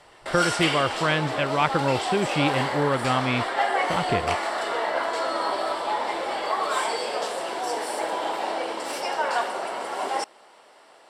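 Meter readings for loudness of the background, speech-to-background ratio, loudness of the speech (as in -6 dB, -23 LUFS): -27.0 LUFS, 1.5 dB, -25.5 LUFS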